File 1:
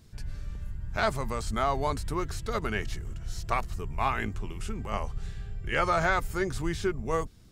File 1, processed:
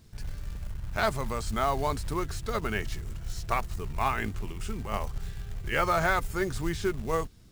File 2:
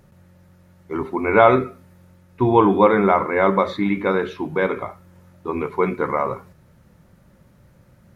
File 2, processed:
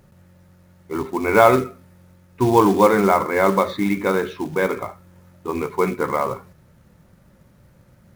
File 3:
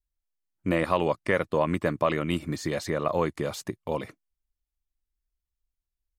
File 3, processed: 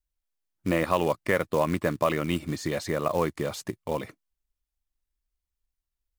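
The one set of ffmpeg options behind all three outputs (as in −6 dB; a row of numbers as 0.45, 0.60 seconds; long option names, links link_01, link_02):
-af "acrusher=bits=5:mode=log:mix=0:aa=0.000001"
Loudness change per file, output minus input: 0.0, 0.0, 0.0 LU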